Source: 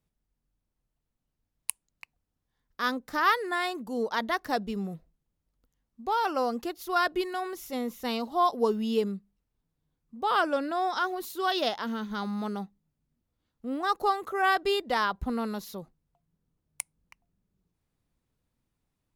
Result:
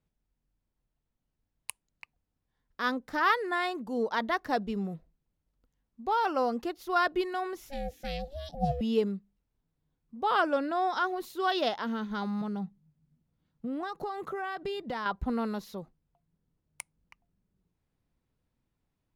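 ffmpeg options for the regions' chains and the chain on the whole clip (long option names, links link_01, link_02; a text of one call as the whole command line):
ffmpeg -i in.wav -filter_complex "[0:a]asettb=1/sr,asplit=3[link_01][link_02][link_03];[link_01]atrim=end=7.694[link_04];[link_02]atrim=start=7.69:end=8.81,asetpts=PTS-STARTPTS,afade=type=in:duration=0.004:curve=qsin,afade=type=out:start_time=1.116:duration=0.004:curve=qsin,asuperstop=centerf=880:order=12:qfactor=0.95,aeval=exprs='val(0)*sin(2*PI*280*n/s)':channel_layout=same[link_05];[link_03]atrim=start=8.806[link_06];[link_04][link_05]acrossfade=duration=0.004:curve1=hsin:curve2=qsin[link_07];[link_07][link_06]acrossfade=duration=0.004:curve1=qsin:curve2=hsin,asettb=1/sr,asplit=3[link_08][link_09][link_10];[link_08]atrim=end=12.414[link_11];[link_09]atrim=start=12.41:end=15.06,asetpts=PTS-STARTPTS,afade=type=in:duration=0.004:curve=qsin,afade=type=out:start_time=2.646:duration=0.004:curve=qsin,equalizer=frequency=160:width_type=o:width=0.58:gain=14.5,acompressor=threshold=-31dB:ratio=5:attack=3.2:release=140:knee=1:detection=peak[link_12];[link_10]atrim=start=15.056[link_13];[link_11][link_12]acrossfade=duration=0.004:curve1=hsin:curve2=qsin[link_14];[link_14][link_13]acrossfade=duration=0.004:curve1=qsin:curve2=hsin,highshelf=frequency=5700:gain=-11,bandreject=frequency=1200:width=28" out.wav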